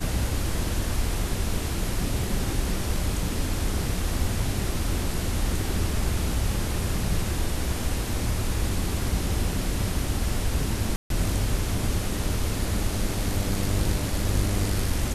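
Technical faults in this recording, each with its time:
0:10.96–0:11.10: drop-out 142 ms

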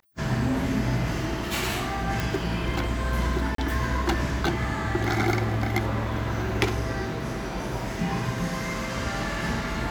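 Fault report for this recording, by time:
0:02.20: click
0:03.55–0:03.58: drop-out 33 ms

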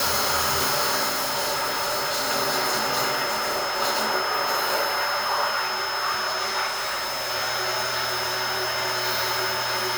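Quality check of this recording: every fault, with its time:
whistle 5,200 Hz −30 dBFS
0:01.08–0:02.31: clipping −22 dBFS
0:03.25–0:03.82: clipping −21.5 dBFS
0:06.66–0:07.30: clipping −24.5 dBFS

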